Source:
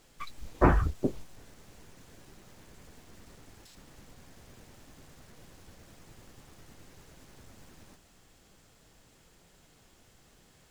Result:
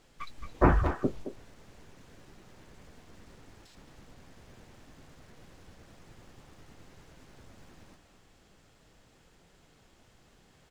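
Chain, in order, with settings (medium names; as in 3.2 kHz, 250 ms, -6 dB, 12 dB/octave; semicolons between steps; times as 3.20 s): treble shelf 7.7 kHz -11 dB; speakerphone echo 220 ms, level -8 dB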